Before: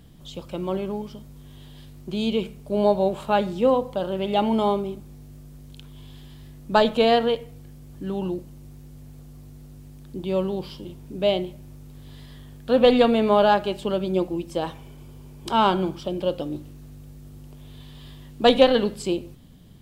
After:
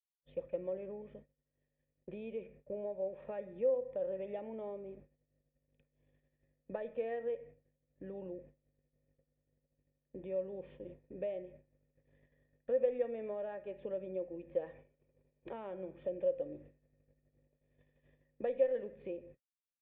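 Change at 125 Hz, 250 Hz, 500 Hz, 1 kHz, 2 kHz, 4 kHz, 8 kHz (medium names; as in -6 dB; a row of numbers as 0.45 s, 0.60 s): -23.5 dB, -24.0 dB, -14.5 dB, -29.0 dB, -24.5 dB, under -35 dB, no reading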